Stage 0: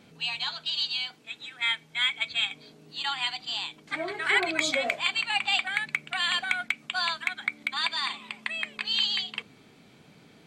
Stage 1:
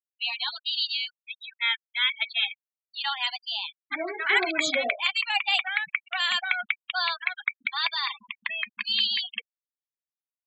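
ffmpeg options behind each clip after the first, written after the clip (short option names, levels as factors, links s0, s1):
-af "afftfilt=real='re*gte(hypot(re,im),0.0316)':imag='im*gte(hypot(re,im),0.0316)':win_size=1024:overlap=0.75,volume=1.19"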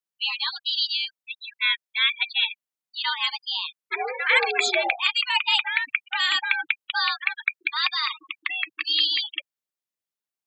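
-af "afreqshift=100,volume=1.41"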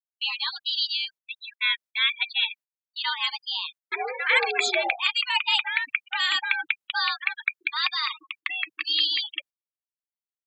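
-af "agate=range=0.0316:threshold=0.00708:ratio=16:detection=peak,volume=0.841"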